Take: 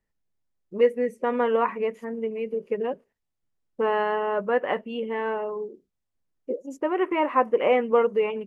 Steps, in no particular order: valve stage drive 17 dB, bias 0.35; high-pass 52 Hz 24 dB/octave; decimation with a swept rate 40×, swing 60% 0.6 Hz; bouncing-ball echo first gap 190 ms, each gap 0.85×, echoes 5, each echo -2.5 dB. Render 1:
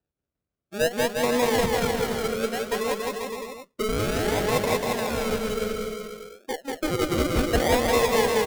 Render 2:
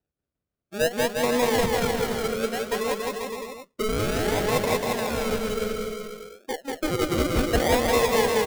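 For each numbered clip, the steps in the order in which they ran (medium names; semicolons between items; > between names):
high-pass > decimation with a swept rate > valve stage > bouncing-ball echo; high-pass > valve stage > decimation with a swept rate > bouncing-ball echo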